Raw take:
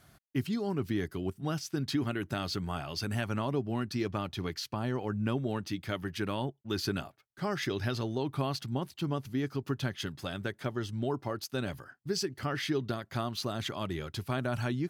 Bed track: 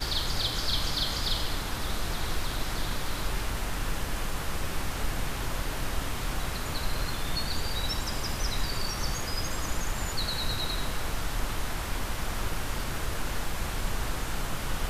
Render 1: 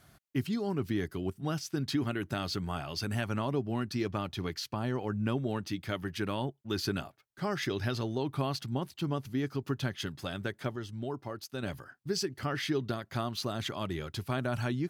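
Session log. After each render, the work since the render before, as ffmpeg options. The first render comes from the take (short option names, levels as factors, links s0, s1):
-filter_complex "[0:a]asplit=3[s0][s1][s2];[s0]atrim=end=10.762[s3];[s1]atrim=start=10.758:end=11.632,asetpts=PTS-STARTPTS,volume=0.596[s4];[s2]atrim=start=11.628[s5];[s3][s4]acrossfade=d=0.004:c1=hsin:c2=hsin[s6];[s6][s5]acrossfade=d=0.004:c1=hsin:c2=hsin"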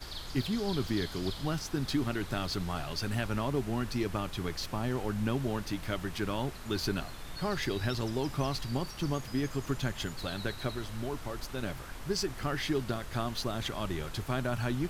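-filter_complex "[1:a]volume=0.237[s0];[0:a][s0]amix=inputs=2:normalize=0"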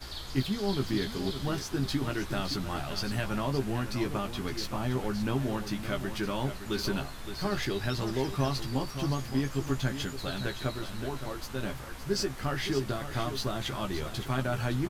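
-filter_complex "[0:a]asplit=2[s0][s1];[s1]adelay=15,volume=0.562[s2];[s0][s2]amix=inputs=2:normalize=0,aecho=1:1:566:0.316"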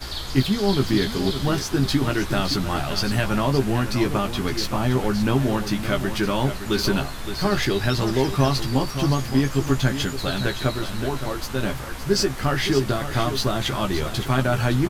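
-af "volume=2.99"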